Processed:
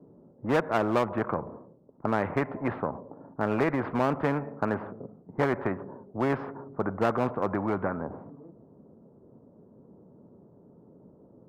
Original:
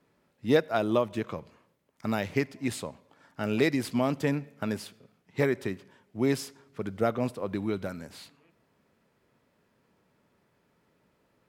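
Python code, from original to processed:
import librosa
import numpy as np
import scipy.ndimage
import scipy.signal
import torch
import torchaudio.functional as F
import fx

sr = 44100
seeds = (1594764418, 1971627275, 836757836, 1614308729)

p1 = np.where(x < 0.0, 10.0 ** (-3.0 / 20.0) * x, x)
p2 = scipy.signal.sosfilt(scipy.signal.butter(4, 1200.0, 'lowpass', fs=sr, output='sos'), p1)
p3 = fx.env_lowpass(p2, sr, base_hz=400.0, full_db=-24.5)
p4 = np.clip(p3, -10.0 ** (-24.5 / 20.0), 10.0 ** (-24.5 / 20.0))
p5 = p3 + F.gain(torch.from_numpy(p4), -11.5).numpy()
p6 = fx.highpass(p5, sr, hz=180.0, slope=6)
y = fx.spectral_comp(p6, sr, ratio=2.0)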